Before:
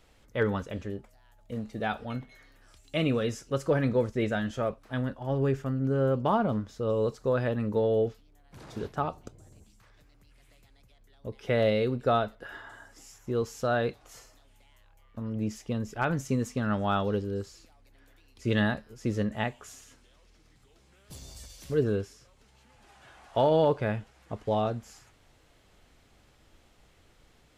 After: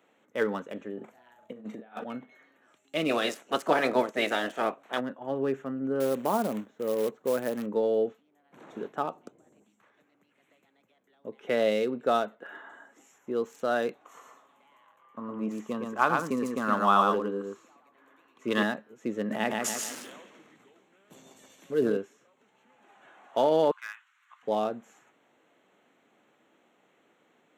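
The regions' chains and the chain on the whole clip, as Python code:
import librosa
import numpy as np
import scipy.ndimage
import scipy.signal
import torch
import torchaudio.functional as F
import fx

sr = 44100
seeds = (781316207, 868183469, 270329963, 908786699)

y = fx.chain(x, sr, fx.doubler(ms=41.0, db=-3.0),
    fx.over_compress(threshold_db=-38.0, ratio=-0.5), at=(0.97, 2.04))
y = fx.spec_clip(y, sr, under_db=19, at=(3.08, 4.99), fade=0.02)
y = fx.peak_eq(y, sr, hz=680.0, db=6.0, octaves=0.54, at=(3.08, 4.99), fade=0.02)
y = fx.chain(y, sr, fx.lowpass(hz=1700.0, slope=6),
    fx.peak_eq(hz=1200.0, db=-3.0, octaves=0.31),
    fx.quant_float(bits=2), at=(6.0, 7.66))
y = fx.chain(y, sr, fx.peak_eq(hz=1100.0, db=14.0, octaves=0.45),
    fx.echo_single(ms=115, db=-3.5), at=(14.05, 18.63))
y = fx.chain(y, sr, fx.highpass(hz=44.0, slope=12),
    fx.echo_feedback(ms=148, feedback_pct=29, wet_db=-8),
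    fx.sustainer(db_per_s=24.0), at=(19.24, 21.97))
y = fx.chain(y, sr, fx.steep_highpass(hz=1100.0, slope=48),
    fx.clip_hard(threshold_db=-29.0), at=(23.71, 24.43))
y = fx.wiener(y, sr, points=9)
y = scipy.signal.sosfilt(scipy.signal.butter(4, 210.0, 'highpass', fs=sr, output='sos'), y)
y = fx.high_shelf(y, sr, hz=6600.0, db=8.0)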